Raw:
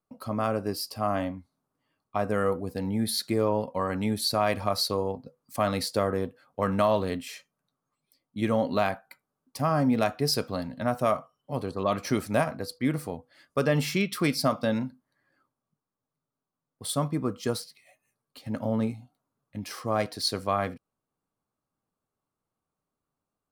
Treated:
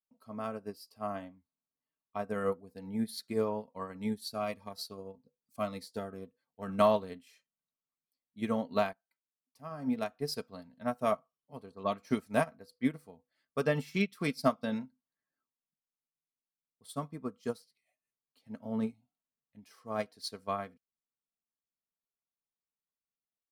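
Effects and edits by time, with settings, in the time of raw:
0:03.93–0:06.80: phaser whose notches keep moving one way falling 1.7 Hz
0:08.93–0:10.55: fade in, from −14 dB
whole clip: comb filter 4.5 ms, depth 39%; expander for the loud parts 2.5 to 1, over −33 dBFS; level −1.5 dB

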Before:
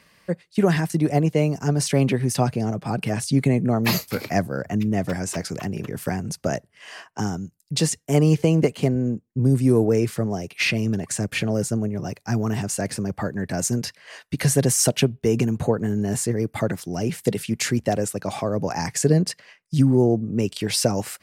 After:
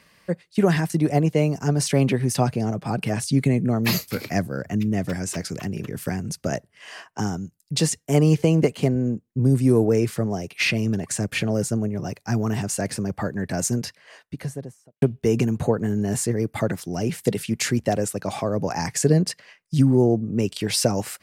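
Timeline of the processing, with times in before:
0:03.24–0:06.52: parametric band 820 Hz −5 dB 1.4 octaves
0:13.59–0:15.02: fade out and dull

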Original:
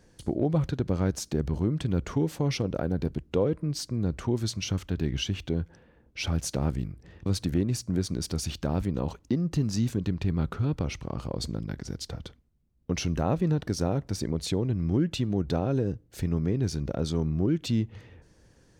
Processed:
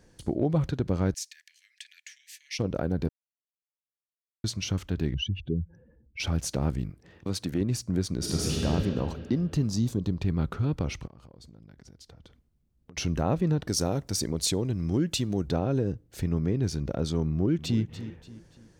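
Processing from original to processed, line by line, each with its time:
0:01.14–0:02.59: Chebyshev high-pass with heavy ripple 1,700 Hz, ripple 3 dB
0:03.09–0:04.44: silence
0:05.14–0:06.20: expanding power law on the bin magnitudes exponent 2.1
0:06.90–0:07.61: high-pass filter 200 Hz 6 dB per octave
0:08.17–0:08.65: thrown reverb, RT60 2.7 s, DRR −4.5 dB
0:09.68–0:10.22: flat-topped bell 2,000 Hz −8.5 dB 1.2 octaves
0:11.07–0:12.97: downward compressor 10 to 1, threshold −47 dBFS
0:13.68–0:15.48: bass and treble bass −2 dB, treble +11 dB
0:17.29–0:17.81: delay throw 290 ms, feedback 40%, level −13 dB

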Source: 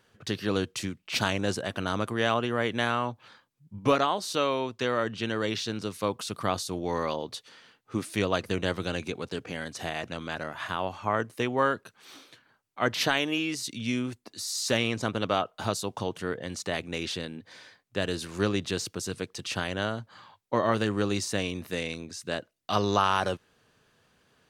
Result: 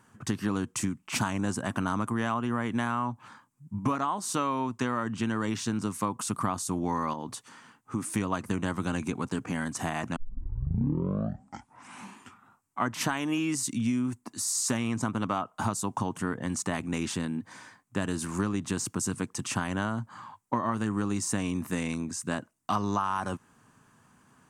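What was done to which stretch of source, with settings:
0:07.13–0:08.13: downward compressor 2 to 1, threshold −36 dBFS
0:10.16: tape start 2.69 s
whole clip: octave-band graphic EQ 125/250/500/1,000/4,000/8,000 Hz +6/+10/−8/+11/−10/+11 dB; downward compressor, threshold −25 dBFS

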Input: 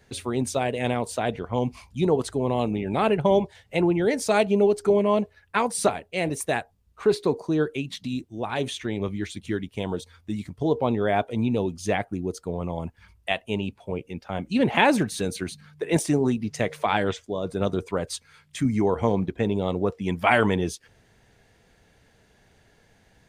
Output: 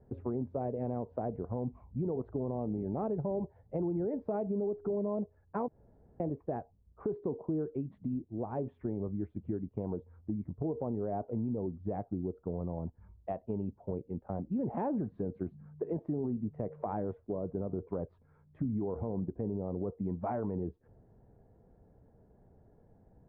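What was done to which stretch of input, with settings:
0:05.68–0:06.20: fill with room tone
whole clip: Bessel low-pass filter 590 Hz, order 4; brickwall limiter −19 dBFS; downward compressor 2.5 to 1, threshold −34 dBFS

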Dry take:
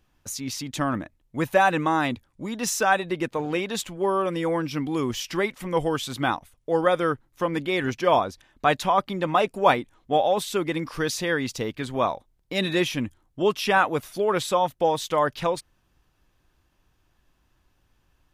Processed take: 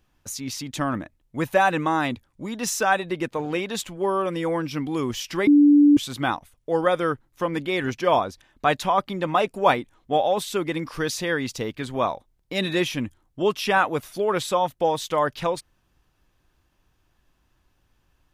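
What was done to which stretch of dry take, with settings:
0:05.47–0:05.97: beep over 291 Hz −10.5 dBFS

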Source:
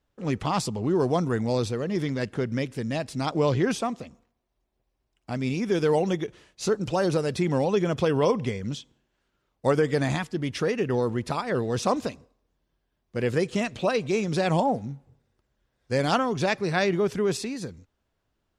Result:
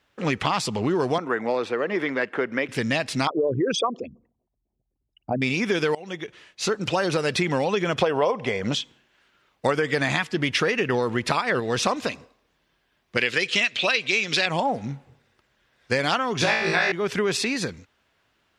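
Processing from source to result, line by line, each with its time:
0:01.18–0:02.69: three-way crossover with the lows and the highs turned down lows −21 dB, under 260 Hz, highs −17 dB, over 2,300 Hz
0:03.27–0:05.42: spectral envelope exaggerated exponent 3
0:05.95–0:07.33: fade in, from −21.5 dB
0:08.01–0:08.75: parametric band 680 Hz +13 dB 1.4 octaves
0:09.69–0:11.60: clip gain +3.5 dB
0:13.17–0:14.46: meter weighting curve D
0:16.39–0:16.92: flutter between parallel walls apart 3.1 metres, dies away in 0.67 s
whole clip: high-pass filter 120 Hz 6 dB per octave; parametric band 2,300 Hz +11 dB 2.4 octaves; downward compressor, threshold −26 dBFS; level +6 dB

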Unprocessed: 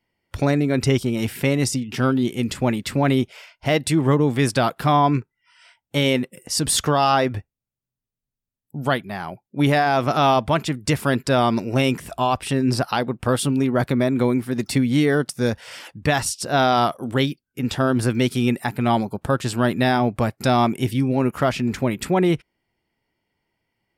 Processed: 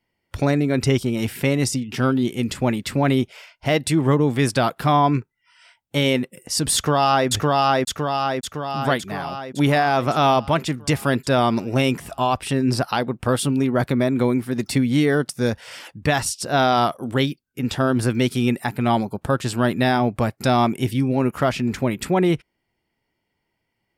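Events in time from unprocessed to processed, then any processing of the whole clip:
0:06.75–0:07.28: delay throw 560 ms, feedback 60%, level −0.5 dB

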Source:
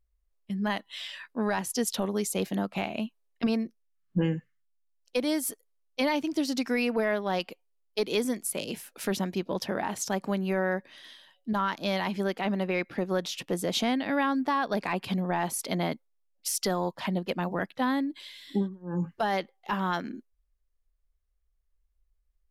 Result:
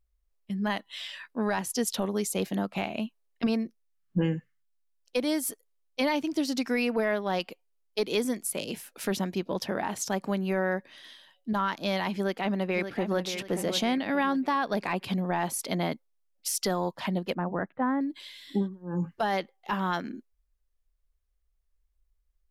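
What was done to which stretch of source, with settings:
0:12.14–0:13.21: delay throw 580 ms, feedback 40%, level −8.5 dB
0:17.34–0:18.01: low-pass filter 1,700 Hz 24 dB per octave

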